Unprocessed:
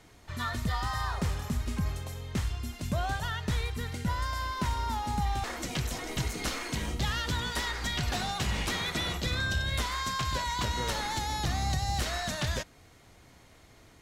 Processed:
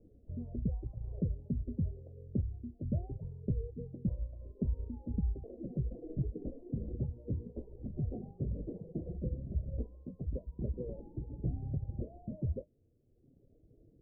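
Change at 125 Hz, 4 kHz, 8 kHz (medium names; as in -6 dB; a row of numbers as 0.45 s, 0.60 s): -3.5 dB, under -40 dB, under -40 dB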